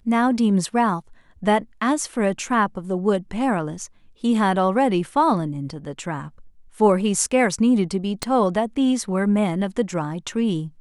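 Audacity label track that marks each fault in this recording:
8.230000	8.230000	pop -8 dBFS

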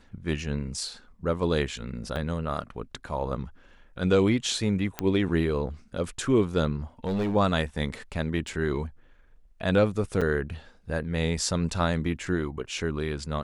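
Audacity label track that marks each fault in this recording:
2.160000	2.160000	gap 3 ms
4.990000	4.990000	pop -12 dBFS
7.040000	7.360000	clipped -23.5 dBFS
8.480000	8.480000	gap 2.5 ms
10.210000	10.220000	gap 6 ms

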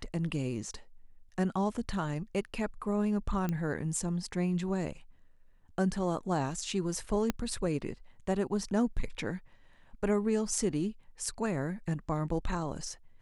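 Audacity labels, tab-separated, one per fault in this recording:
3.490000	3.490000	pop -20 dBFS
7.300000	7.300000	pop -15 dBFS

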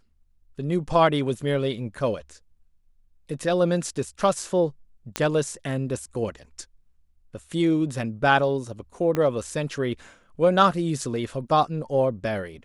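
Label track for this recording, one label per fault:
5.160000	5.160000	pop -8 dBFS
9.150000	9.150000	pop -13 dBFS

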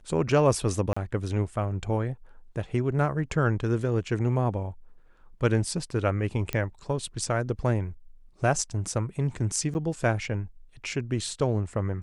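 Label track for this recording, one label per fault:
0.930000	0.960000	gap 35 ms
6.530000	6.530000	pop -14 dBFS
9.740000	9.750000	gap 9.8 ms

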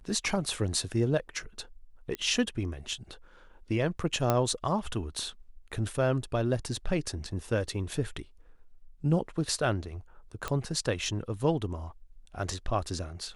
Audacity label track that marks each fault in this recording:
2.150000	2.150000	pop -20 dBFS
4.300000	4.300000	pop -11 dBFS
10.480000	10.480000	pop -17 dBFS

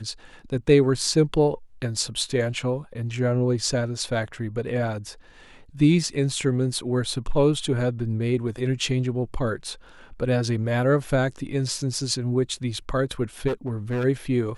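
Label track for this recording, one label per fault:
13.470000	14.050000	clipped -22.5 dBFS

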